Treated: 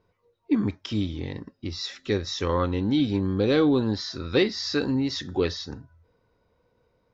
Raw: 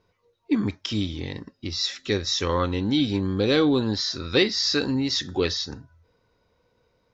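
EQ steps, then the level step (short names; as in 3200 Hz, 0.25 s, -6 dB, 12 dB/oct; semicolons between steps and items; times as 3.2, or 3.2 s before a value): high shelf 2400 Hz -9 dB; 0.0 dB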